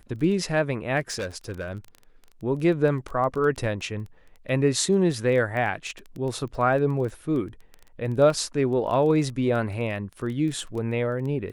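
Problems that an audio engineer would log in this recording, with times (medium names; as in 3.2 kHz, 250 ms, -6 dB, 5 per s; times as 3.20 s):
crackle 13 per s -31 dBFS
1.10–1.95 s: clipped -26 dBFS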